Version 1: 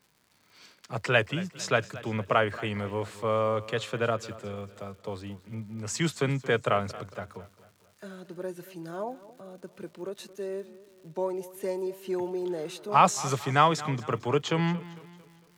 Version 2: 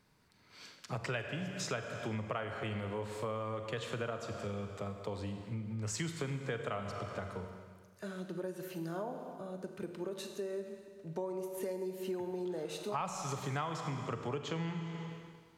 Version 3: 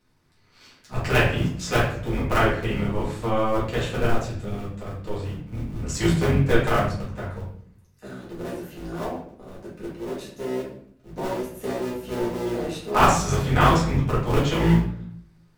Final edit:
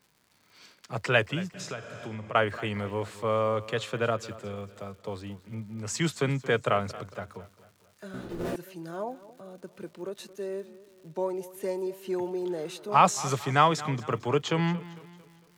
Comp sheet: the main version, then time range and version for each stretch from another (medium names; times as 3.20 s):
1
1.54–2.35 s: from 2
8.14–8.56 s: from 3